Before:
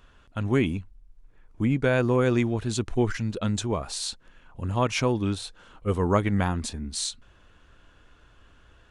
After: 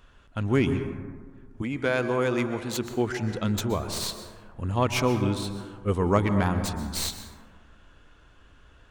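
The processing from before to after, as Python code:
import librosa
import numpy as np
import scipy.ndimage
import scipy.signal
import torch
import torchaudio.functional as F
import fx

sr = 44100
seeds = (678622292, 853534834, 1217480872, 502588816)

y = fx.tracing_dist(x, sr, depth_ms=0.071)
y = fx.highpass(y, sr, hz=fx.line((1.61, 520.0), (3.21, 200.0)), slope=6, at=(1.61, 3.21), fade=0.02)
y = fx.rev_plate(y, sr, seeds[0], rt60_s=1.7, hf_ratio=0.3, predelay_ms=110, drr_db=8.5)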